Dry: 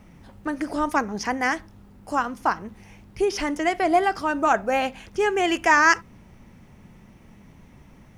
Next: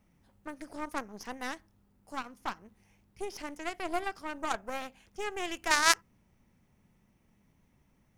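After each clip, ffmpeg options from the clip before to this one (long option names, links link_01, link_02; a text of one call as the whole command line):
ffmpeg -i in.wav -af "crystalizer=i=1:c=0,aeval=exprs='0.841*(cos(1*acos(clip(val(0)/0.841,-1,1)))-cos(1*PI/2))+0.168*(cos(2*acos(clip(val(0)/0.841,-1,1)))-cos(2*PI/2))+0.237*(cos(3*acos(clip(val(0)/0.841,-1,1)))-cos(3*PI/2))+0.0376*(cos(8*acos(clip(val(0)/0.841,-1,1)))-cos(8*PI/2))':channel_layout=same,volume=-2.5dB" out.wav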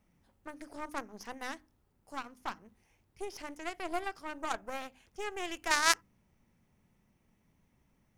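ffmpeg -i in.wav -af "bandreject=frequency=50:width_type=h:width=6,bandreject=frequency=100:width_type=h:width=6,bandreject=frequency=150:width_type=h:width=6,bandreject=frequency=200:width_type=h:width=6,bandreject=frequency=250:width_type=h:width=6,bandreject=frequency=300:width_type=h:width=6,volume=-2.5dB" out.wav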